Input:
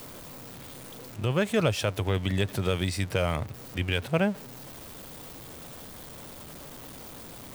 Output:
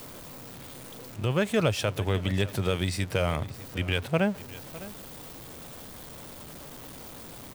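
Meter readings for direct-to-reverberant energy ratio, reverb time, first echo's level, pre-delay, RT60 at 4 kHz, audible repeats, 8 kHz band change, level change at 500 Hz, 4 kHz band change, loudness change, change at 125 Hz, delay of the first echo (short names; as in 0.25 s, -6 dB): none, none, -17.5 dB, none, none, 1, 0.0 dB, 0.0 dB, 0.0 dB, -0.5 dB, 0.0 dB, 0.606 s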